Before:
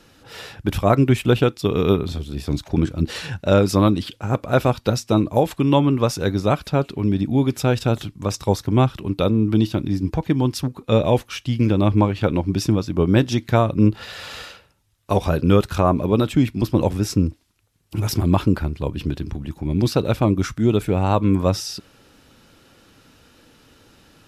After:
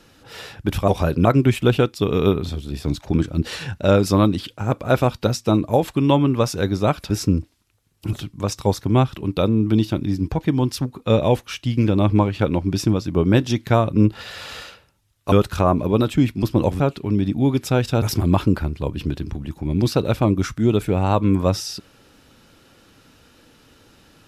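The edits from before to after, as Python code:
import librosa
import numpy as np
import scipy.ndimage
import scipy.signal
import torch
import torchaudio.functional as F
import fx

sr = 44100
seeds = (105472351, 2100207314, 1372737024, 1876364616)

y = fx.edit(x, sr, fx.swap(start_s=6.73, length_s=1.22, other_s=16.99, other_length_s=1.03),
    fx.move(start_s=15.14, length_s=0.37, to_s=0.88), tone=tone)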